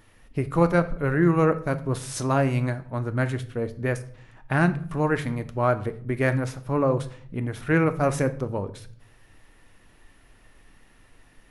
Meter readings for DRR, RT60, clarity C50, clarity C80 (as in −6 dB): 10.0 dB, 0.55 s, 15.5 dB, 19.5 dB